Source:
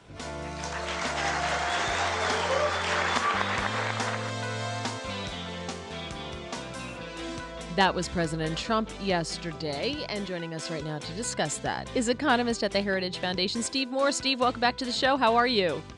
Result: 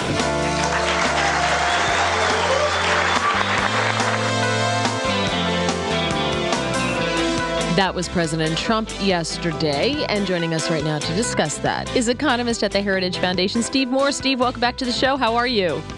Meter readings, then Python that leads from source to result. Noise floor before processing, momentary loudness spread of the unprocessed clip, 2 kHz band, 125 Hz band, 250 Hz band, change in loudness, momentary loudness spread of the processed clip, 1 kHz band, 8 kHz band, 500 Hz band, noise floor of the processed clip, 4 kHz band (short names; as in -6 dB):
-41 dBFS, 12 LU, +9.0 dB, +10.0 dB, +9.5 dB, +8.5 dB, 3 LU, +7.5 dB, +8.5 dB, +8.5 dB, -30 dBFS, +8.5 dB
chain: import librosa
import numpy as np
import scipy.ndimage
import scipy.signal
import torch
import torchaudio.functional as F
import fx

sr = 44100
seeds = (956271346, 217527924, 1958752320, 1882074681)

y = fx.band_squash(x, sr, depth_pct=100)
y = F.gain(torch.from_numpy(y), 7.5).numpy()